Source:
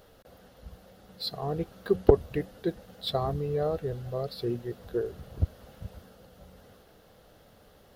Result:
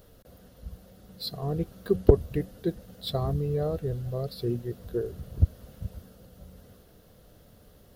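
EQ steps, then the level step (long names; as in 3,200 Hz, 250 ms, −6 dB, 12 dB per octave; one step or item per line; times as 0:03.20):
low-shelf EQ 380 Hz +11.5 dB
high-shelf EQ 5,300 Hz +11 dB
notch filter 820 Hz, Q 12
−5.5 dB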